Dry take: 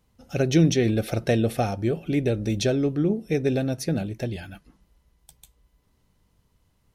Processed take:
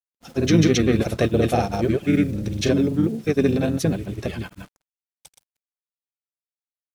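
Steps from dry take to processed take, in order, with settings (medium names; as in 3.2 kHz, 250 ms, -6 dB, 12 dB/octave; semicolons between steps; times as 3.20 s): bass shelf 69 Hz -9.5 dB; in parallel at -2.5 dB: peak limiter -16 dBFS, peak gain reduction 6.5 dB; on the sum: harmony voices -7 st -7 dB, -3 st -17 dB; word length cut 8-bit, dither none; granulator 100 ms, grains 20 per s, pitch spread up and down by 0 st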